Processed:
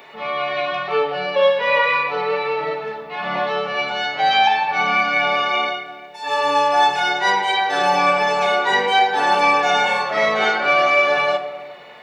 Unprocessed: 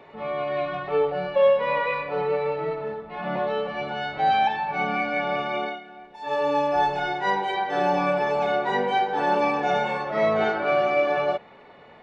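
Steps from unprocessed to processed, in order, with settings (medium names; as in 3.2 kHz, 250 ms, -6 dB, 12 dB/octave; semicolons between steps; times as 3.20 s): tilt EQ +4 dB/octave; on a send: reverberation RT60 1.4 s, pre-delay 4 ms, DRR 7 dB; on the sum: trim +6 dB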